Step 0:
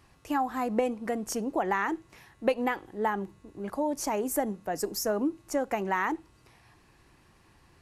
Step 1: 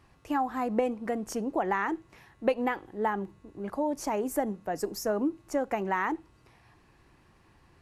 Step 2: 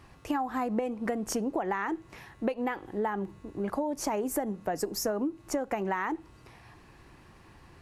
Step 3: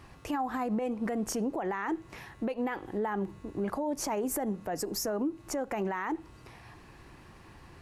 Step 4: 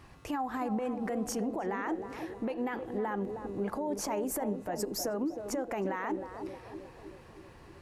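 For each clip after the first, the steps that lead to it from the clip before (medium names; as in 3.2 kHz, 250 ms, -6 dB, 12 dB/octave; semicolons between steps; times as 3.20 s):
treble shelf 3.8 kHz -7 dB
compression 6:1, threshold -34 dBFS, peak gain reduction 13.5 dB; trim +6.5 dB
peak limiter -26 dBFS, peak gain reduction 9 dB; trim +2 dB
band-passed feedback delay 314 ms, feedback 65%, band-pass 440 Hz, level -6 dB; trim -2 dB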